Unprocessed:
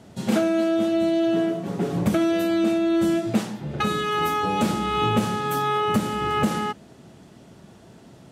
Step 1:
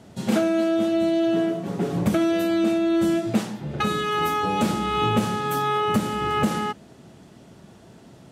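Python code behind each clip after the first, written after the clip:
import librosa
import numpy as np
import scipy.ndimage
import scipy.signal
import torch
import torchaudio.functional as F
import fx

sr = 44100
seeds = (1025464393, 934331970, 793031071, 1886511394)

y = x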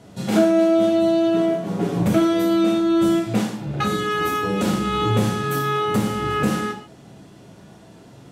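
y = fx.rev_gated(x, sr, seeds[0], gate_ms=170, shape='falling', drr_db=0.5)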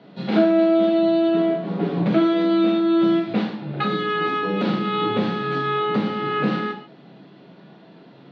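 y = scipy.signal.sosfilt(scipy.signal.cheby1(4, 1.0, [150.0, 4200.0], 'bandpass', fs=sr, output='sos'), x)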